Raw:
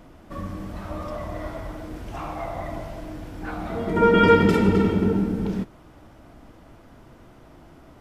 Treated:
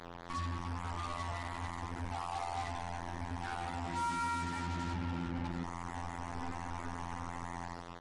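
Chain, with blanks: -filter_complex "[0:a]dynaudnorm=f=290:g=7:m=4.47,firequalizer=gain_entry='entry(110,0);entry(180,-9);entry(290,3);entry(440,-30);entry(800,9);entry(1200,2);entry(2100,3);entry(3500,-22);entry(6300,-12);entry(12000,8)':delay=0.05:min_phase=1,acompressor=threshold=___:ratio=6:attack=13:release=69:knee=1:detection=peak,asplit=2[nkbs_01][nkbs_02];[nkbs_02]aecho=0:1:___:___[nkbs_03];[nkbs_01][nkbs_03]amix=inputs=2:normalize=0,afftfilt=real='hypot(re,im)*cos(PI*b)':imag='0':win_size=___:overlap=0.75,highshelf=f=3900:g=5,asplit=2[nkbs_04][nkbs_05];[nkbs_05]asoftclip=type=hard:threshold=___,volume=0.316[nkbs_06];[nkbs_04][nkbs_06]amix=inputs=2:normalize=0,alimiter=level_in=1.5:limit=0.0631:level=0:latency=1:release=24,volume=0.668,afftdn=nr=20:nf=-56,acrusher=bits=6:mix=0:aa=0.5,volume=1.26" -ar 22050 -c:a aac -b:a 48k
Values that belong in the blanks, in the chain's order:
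0.0224, 147, 0.1, 2048, 0.0224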